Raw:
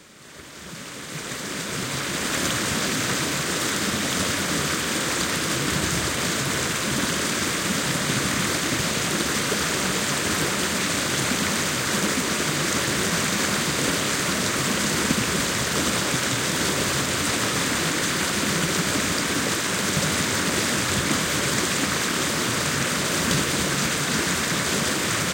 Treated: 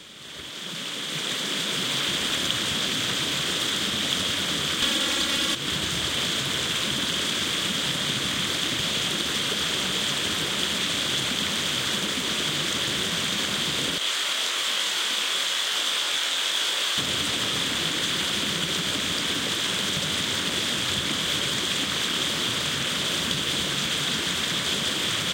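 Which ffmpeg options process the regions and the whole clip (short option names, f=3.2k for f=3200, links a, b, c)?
-filter_complex "[0:a]asettb=1/sr,asplit=3[a][b][c];[a]atrim=end=0.504[d];[b]atrim=start=0.5:end=2.08,asetpts=PTS-STARTPTS,afade=t=in:d=0.004:c=qsin,afade=t=out:st=1.576:d=0.004:c=qsin,highpass=f=140:w=0.5412,highpass=f=140:w=1.3066,volume=23.5dB,asoftclip=hard,volume=-23.5dB[e];[c]atrim=start=2.076[f];[d][e]acrossfade=d=0.004:c1=hsin:c2=qsin[g];[g][f]acrossfade=d=0.004:c1=qsin:c2=hsin,asettb=1/sr,asplit=3[h][i][j];[h]atrim=end=4.824[k];[i]atrim=start=4.82:end=5.55,asetpts=PTS-STARTPTS,afade=t=in:d=0.004:c=qsin,afade=t=out:st=0.726:d=0.004:c=qsin,aecho=1:1:3.6:0.63,atrim=end_sample=32193,acontrast=88[l];[j]atrim=start=5.546[m];[k][l]acrossfade=d=0.004:c1=hsin:c2=qsin[n];[n][m]acrossfade=d=0.004:c1=qsin:c2=hsin,asettb=1/sr,asplit=3[o][p][q];[o]atrim=end=13.984[r];[p]atrim=start=13.98:end=16.98,asetpts=PTS-STARTPTS,afade=t=in:d=0.004:c=qsin,afade=t=out:st=2.996:d=0.004:c=qsin,highpass=610,flanger=delay=19:depth=4.4:speed=1.1,asplit=2[s][t];[t]adelay=34,volume=-11.5dB[u];[s][u]amix=inputs=2:normalize=0,atrim=end_sample=132300[v];[q]atrim=start=16.976[w];[r][v]acrossfade=d=0.004:c1=hsin:c2=qsin[x];[x][w]acrossfade=d=0.004:c1=qsin:c2=hsin,acompressor=threshold=-27dB:ratio=6,equalizer=f=3.3k:w=2.7:g=14.5"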